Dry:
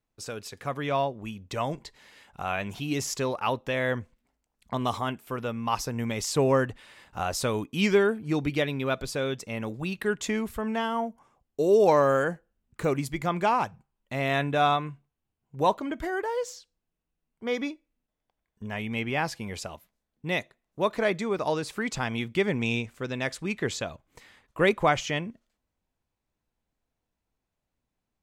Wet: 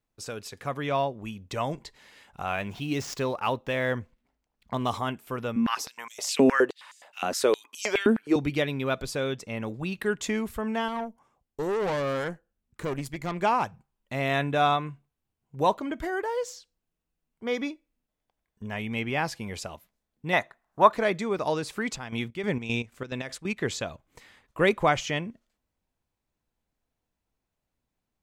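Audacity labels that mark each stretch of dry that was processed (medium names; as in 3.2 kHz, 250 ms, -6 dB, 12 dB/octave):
2.460000	4.910000	median filter over 5 samples
5.560000	8.360000	step-sequenced high-pass 9.6 Hz 240–6600 Hz
9.330000	9.940000	treble shelf 6.3 kHz -5.5 dB
10.880000	13.420000	valve stage drive 25 dB, bias 0.7
20.330000	20.930000	high-order bell 1.1 kHz +12 dB
21.740000	23.560000	square tremolo 2.3 Hz -> 7.1 Hz, depth 65%, duty 55%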